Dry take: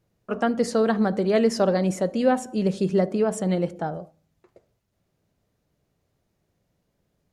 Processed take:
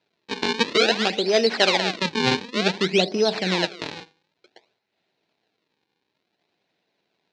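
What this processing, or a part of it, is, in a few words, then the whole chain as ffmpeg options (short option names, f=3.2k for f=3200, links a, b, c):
circuit-bent sampling toy: -filter_complex "[0:a]acrusher=samples=38:mix=1:aa=0.000001:lfo=1:lforange=60.8:lforate=0.55,highpass=420,equalizer=f=550:t=q:w=4:g=-7,equalizer=f=1.2k:t=q:w=4:g=-9,equalizer=f=2.5k:t=q:w=4:g=4,equalizer=f=4k:t=q:w=4:g=9,lowpass=f=5.7k:w=0.5412,lowpass=f=5.7k:w=1.3066,asettb=1/sr,asplit=3[a][b][c];[a]atrim=end=2.054[d];[b]atrim=start=2.05:end=3.65,asetpts=PTS-STARTPTS,afade=t=in:d=0.004:c=qsin,afade=t=out:st=1.596:d=0.004:c=qsin,equalizer=f=170:w=1.1:g=6[e];[c]atrim=start=3.646[f];[d][e]acrossfade=d=0.004:c1=hsin:c2=qsin[g];[g][f]acrossfade=d=0.004:c1=qsin:c2=hsin,volume=5.5dB"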